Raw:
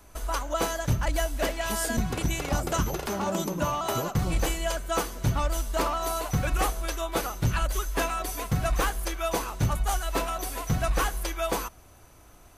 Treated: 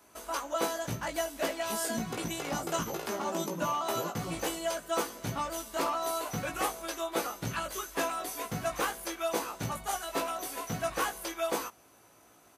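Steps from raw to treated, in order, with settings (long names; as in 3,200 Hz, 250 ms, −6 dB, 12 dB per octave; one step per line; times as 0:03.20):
high-pass filter 200 Hz 12 dB per octave
double-tracking delay 18 ms −3.5 dB
level −5 dB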